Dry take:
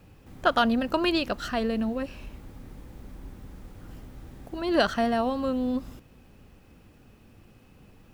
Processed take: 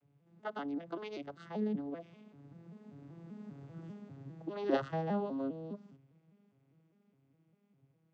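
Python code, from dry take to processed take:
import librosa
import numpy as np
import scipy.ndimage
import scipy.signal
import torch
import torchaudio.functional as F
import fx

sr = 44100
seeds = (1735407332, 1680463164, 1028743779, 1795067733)

y = fx.vocoder_arp(x, sr, chord='minor triad', root=49, every_ms=198)
y = fx.doppler_pass(y, sr, speed_mps=8, closest_m=5.0, pass_at_s=3.72)
y = y * librosa.db_to_amplitude(-1.0)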